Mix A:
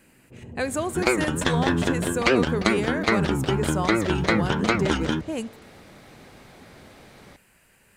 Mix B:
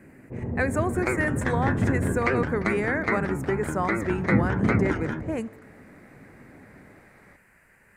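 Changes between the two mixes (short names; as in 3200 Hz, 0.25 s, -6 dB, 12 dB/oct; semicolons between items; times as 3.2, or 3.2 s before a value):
first sound +10.5 dB; second sound -7.0 dB; master: add resonant high shelf 2500 Hz -7.5 dB, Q 3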